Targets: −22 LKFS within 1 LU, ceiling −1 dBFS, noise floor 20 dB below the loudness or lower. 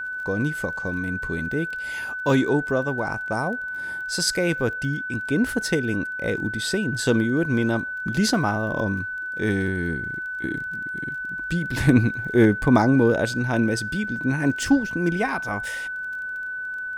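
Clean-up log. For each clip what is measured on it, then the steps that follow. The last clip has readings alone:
crackle rate 22 per second; interfering tone 1,500 Hz; level of the tone −28 dBFS; integrated loudness −23.5 LKFS; sample peak −4.5 dBFS; target loudness −22.0 LKFS
→ click removal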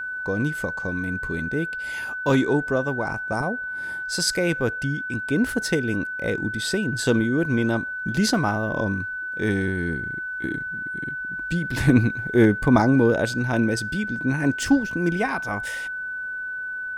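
crackle rate 0.47 per second; interfering tone 1,500 Hz; level of the tone −28 dBFS
→ notch filter 1,500 Hz, Q 30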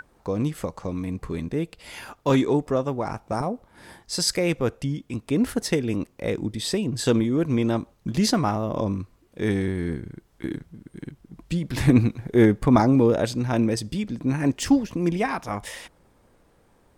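interfering tone none found; integrated loudness −24.5 LKFS; sample peak −5.0 dBFS; target loudness −22.0 LKFS
→ level +2.5 dB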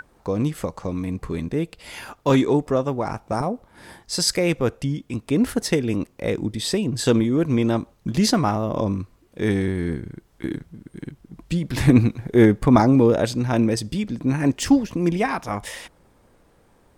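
integrated loudness −22.0 LKFS; sample peak −2.5 dBFS; background noise floor −58 dBFS

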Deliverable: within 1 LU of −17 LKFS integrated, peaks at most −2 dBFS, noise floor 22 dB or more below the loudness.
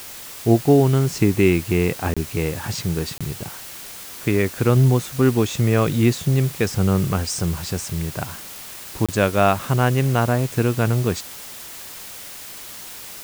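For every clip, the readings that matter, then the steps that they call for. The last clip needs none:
number of dropouts 3; longest dropout 26 ms; background noise floor −37 dBFS; target noise floor −42 dBFS; integrated loudness −20.0 LKFS; sample peak −3.5 dBFS; target loudness −17.0 LKFS
→ repair the gap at 0:02.14/0:03.18/0:09.06, 26 ms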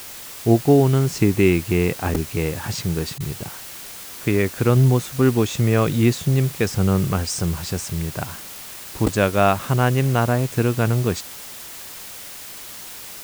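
number of dropouts 0; background noise floor −37 dBFS; target noise floor −42 dBFS
→ broadband denoise 6 dB, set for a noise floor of −37 dBFS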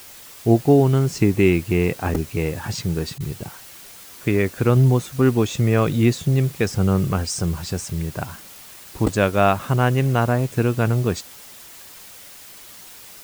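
background noise floor −42 dBFS; target noise floor −43 dBFS
→ broadband denoise 6 dB, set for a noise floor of −42 dBFS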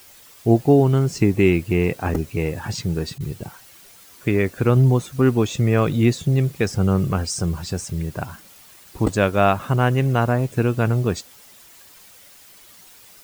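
background noise floor −48 dBFS; integrated loudness −20.5 LKFS; sample peak −4.0 dBFS; target loudness −17.0 LKFS
→ level +3.5 dB
brickwall limiter −2 dBFS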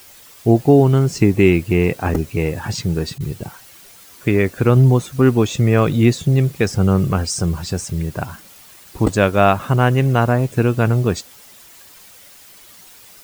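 integrated loudness −17.0 LKFS; sample peak −2.0 dBFS; background noise floor −44 dBFS

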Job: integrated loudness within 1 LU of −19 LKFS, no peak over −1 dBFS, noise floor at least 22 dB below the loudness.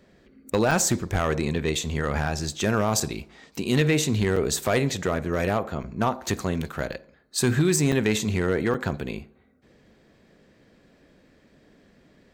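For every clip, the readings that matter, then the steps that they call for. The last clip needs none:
share of clipped samples 0.5%; peaks flattened at −14.0 dBFS; number of dropouts 8; longest dropout 5.0 ms; integrated loudness −25.0 LKFS; sample peak −14.0 dBFS; target loudness −19.0 LKFS
→ clipped peaks rebuilt −14 dBFS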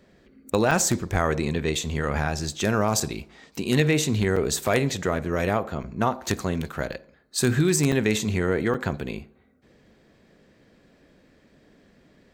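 share of clipped samples 0.0%; number of dropouts 8; longest dropout 5.0 ms
→ repair the gap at 0:00.71/0:01.75/0:03.00/0:04.36/0:05.83/0:06.93/0:07.92/0:08.74, 5 ms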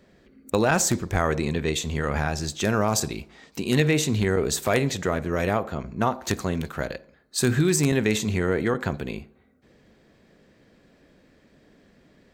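number of dropouts 0; integrated loudness −24.5 LKFS; sample peak −5.0 dBFS; target loudness −19.0 LKFS
→ level +5.5 dB
brickwall limiter −1 dBFS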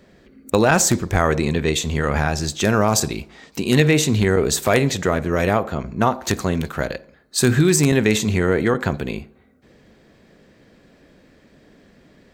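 integrated loudness −19.0 LKFS; sample peak −1.0 dBFS; background noise floor −54 dBFS

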